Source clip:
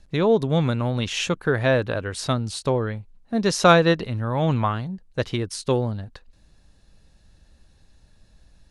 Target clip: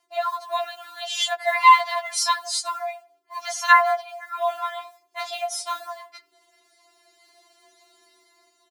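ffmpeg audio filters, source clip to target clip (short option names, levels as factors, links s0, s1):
-filter_complex "[0:a]asettb=1/sr,asplit=3[s0][s1][s2];[s0]atrim=end=1.364[s3];[s1]atrim=start=1.36:end=2.66,asetpts=PTS-STARTPTS,afade=t=in:d=0.004:c=qsin,afade=t=out:st=1.296:d=0.004:c=qsin,equalizer=f=6300:w=0.66:g=8[s4];[s2]atrim=start=2.656[s5];[s3][s4]acrossfade=d=0.004:c1=hsin:c2=qsin[s6];[s6][s5]acrossfade=d=0.004:c1=qsin:c2=hsin,dynaudnorm=f=410:g=5:m=3.98,asplit=2[s7][s8];[s8]adelay=85,lowpass=f=1200:p=1,volume=0.112,asplit=2[s9][s10];[s10]adelay=85,lowpass=f=1200:p=1,volume=0.44,asplit=2[s11][s12];[s12]adelay=85,lowpass=f=1200:p=1,volume=0.44[s13];[s7][s9][s11][s13]amix=inputs=4:normalize=0,acrusher=bits=8:mode=log:mix=0:aa=0.000001,asettb=1/sr,asplit=3[s14][s15][s16];[s14]atrim=end=4.474[s17];[s15]atrim=start=4.47:end=5.82,asetpts=PTS-STARTPTS,afade=t=in:d=0.004:c=qsin,afade=t=out:st=1.346:d=0.004:c=qsin,asplit=2[s18][s19];[s19]adelay=24,volume=0.562[s20];[s18][s20]amix=inputs=2:normalize=0,atrim=end_sample=59535[s21];[s16]atrim=start=5.816[s22];[s17][s21]acrossfade=d=0.004:c1=hsin:c2=qsin[s23];[s23][s22]acrossfade=d=0.004:c1=qsin:c2=hsin,afreqshift=370,afftfilt=real='re*4*eq(mod(b,16),0)':imag='im*4*eq(mod(b,16),0)':win_size=2048:overlap=0.75,volume=0.794"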